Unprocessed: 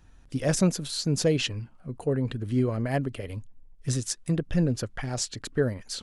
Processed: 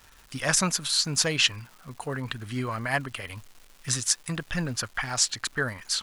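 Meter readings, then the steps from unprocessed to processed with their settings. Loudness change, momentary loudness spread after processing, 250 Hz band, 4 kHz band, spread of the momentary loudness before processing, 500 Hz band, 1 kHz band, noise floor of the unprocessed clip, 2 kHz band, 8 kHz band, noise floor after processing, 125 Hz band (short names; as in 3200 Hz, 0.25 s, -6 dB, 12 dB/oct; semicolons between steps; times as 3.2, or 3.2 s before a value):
+1.5 dB, 17 LU, -6.5 dB, +8.0 dB, 13 LU, -6.5 dB, +6.0 dB, -53 dBFS, +9.0 dB, +7.5 dB, -55 dBFS, -6.0 dB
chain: resonant low shelf 710 Hz -13 dB, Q 1.5; crackle 410/s -49 dBFS; gain +7.5 dB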